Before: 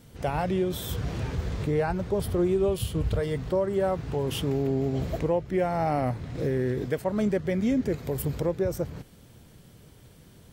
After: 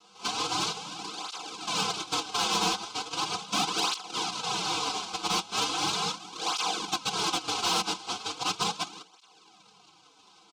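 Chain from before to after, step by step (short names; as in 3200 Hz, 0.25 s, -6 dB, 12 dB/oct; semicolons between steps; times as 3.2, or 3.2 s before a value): CVSD 64 kbps; low shelf 160 Hz -9.5 dB; reverb RT60 0.70 s, pre-delay 4 ms, DRR 13.5 dB; noise vocoder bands 1; LPF 3700 Hz 12 dB/oct; sine folder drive 4 dB, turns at -13.5 dBFS; fixed phaser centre 370 Hz, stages 8; comb 3.9 ms, depth 64%; overloaded stage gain 17.5 dB; tape flanging out of phase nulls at 0.38 Hz, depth 7.8 ms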